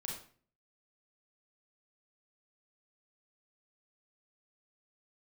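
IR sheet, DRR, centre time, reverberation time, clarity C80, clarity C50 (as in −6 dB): −2.0 dB, 39 ms, 0.45 s, 8.0 dB, 3.0 dB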